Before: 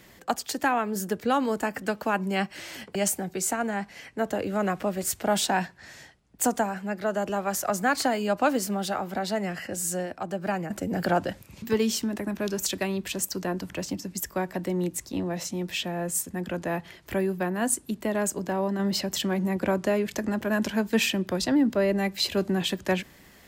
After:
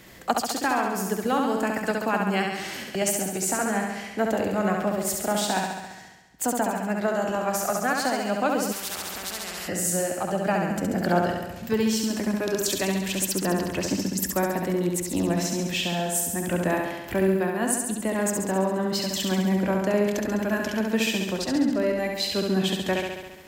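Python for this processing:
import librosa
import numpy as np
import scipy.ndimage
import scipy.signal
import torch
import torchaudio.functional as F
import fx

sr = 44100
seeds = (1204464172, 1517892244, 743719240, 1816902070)

y = fx.rider(x, sr, range_db=4, speed_s=0.5)
y = fx.room_flutter(y, sr, wall_m=11.7, rt60_s=1.1)
y = fx.spectral_comp(y, sr, ratio=4.0, at=(8.71, 9.67), fade=0.02)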